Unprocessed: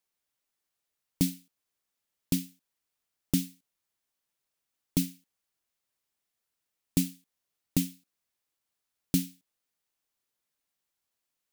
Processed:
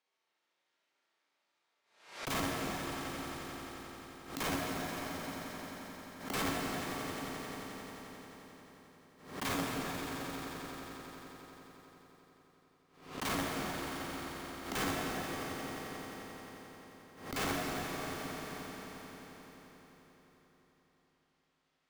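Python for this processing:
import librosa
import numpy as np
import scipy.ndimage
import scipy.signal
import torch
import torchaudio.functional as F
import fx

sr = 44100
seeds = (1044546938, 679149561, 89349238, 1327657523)

p1 = scipy.signal.sosfilt(scipy.signal.butter(2, 3700.0, 'lowpass', fs=sr, output='sos'), x)
p2 = fx.env_lowpass_down(p1, sr, base_hz=640.0, full_db=-28.5)
p3 = scipy.signal.sosfilt(scipy.signal.butter(2, 310.0, 'highpass', fs=sr, output='sos'), p2)
p4 = fx.level_steps(p3, sr, step_db=11)
p5 = p3 + (p4 * librosa.db_to_amplitude(-2.0))
p6 = 10.0 ** (-21.0 / 20.0) * np.tanh(p5 / 10.0 ** (-21.0 / 20.0))
p7 = fx.stretch_grains(p6, sr, factor=1.9, grain_ms=149.0)
p8 = (np.mod(10.0 ** (34.5 / 20.0) * p7 + 1.0, 2.0) - 1.0) / 10.0 ** (34.5 / 20.0)
p9 = p8 + fx.echo_swell(p8, sr, ms=88, loudest=5, wet_db=-13, dry=0)
p10 = fx.rev_plate(p9, sr, seeds[0], rt60_s=4.1, hf_ratio=0.65, predelay_ms=0, drr_db=-3.5)
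p11 = fx.pre_swell(p10, sr, db_per_s=100.0)
y = p11 * librosa.db_to_amplitude(3.0)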